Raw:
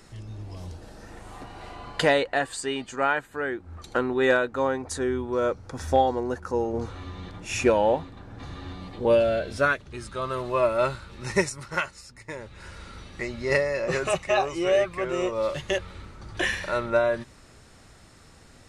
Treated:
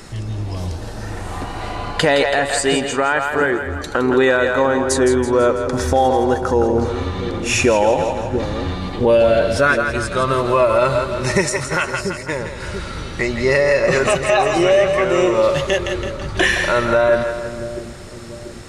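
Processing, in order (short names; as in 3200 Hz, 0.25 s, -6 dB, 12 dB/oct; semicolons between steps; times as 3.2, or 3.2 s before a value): in parallel at -2 dB: compressor, threshold -31 dBFS, peak gain reduction 15 dB; on the sum: split-band echo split 420 Hz, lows 0.687 s, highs 0.165 s, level -8.5 dB; limiter -14 dBFS, peak gain reduction 6.5 dB; gain +8.5 dB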